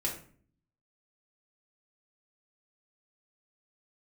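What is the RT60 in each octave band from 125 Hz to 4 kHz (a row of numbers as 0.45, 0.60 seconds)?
0.85, 0.80, 0.55, 0.45, 0.40, 0.35 seconds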